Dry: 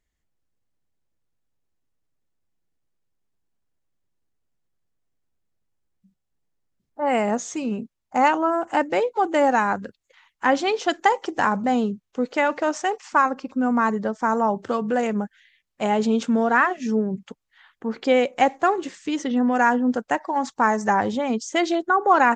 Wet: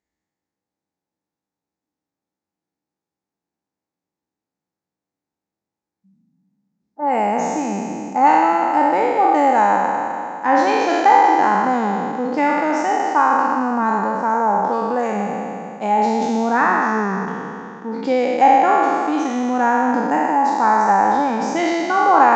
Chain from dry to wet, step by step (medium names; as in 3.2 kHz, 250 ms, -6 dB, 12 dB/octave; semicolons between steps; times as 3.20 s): spectral sustain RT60 2.66 s; cabinet simulation 100–7400 Hz, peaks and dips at 120 Hz -8 dB, 190 Hz +5 dB, 300 Hz +8 dB, 490 Hz +3 dB, 840 Hz +10 dB, 3.1 kHz -7 dB; trim -5 dB